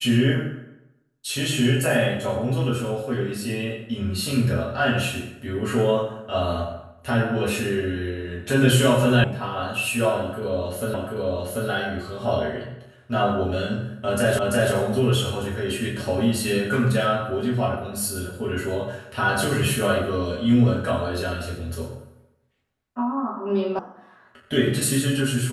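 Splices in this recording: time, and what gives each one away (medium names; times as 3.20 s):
9.24 s: sound stops dead
10.94 s: repeat of the last 0.74 s
14.39 s: repeat of the last 0.34 s
23.79 s: sound stops dead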